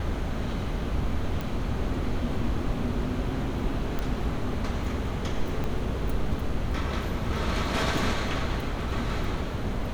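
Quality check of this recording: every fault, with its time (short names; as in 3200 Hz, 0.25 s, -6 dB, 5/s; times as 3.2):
1.41 pop
3.99 pop -17 dBFS
5.64 pop -19 dBFS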